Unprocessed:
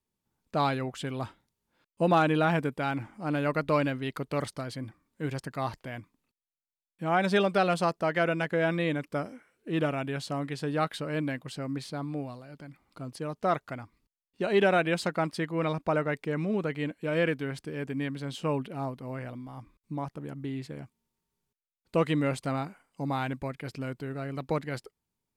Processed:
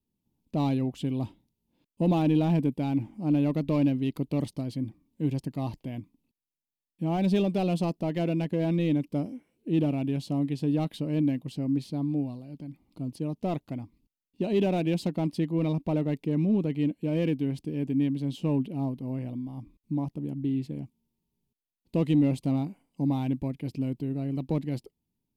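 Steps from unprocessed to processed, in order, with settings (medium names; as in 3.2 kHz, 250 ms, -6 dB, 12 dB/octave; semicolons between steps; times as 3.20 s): in parallel at -9 dB: wavefolder -25 dBFS; on the sum: FFT filter 110 Hz 0 dB, 290 Hz +4 dB, 430 Hz -6 dB, 970 Hz -10 dB, 1.4 kHz -25 dB, 2.7 kHz -7 dB, 8.3 kHz -11 dB, 12 kHz -5 dB; trim +1.5 dB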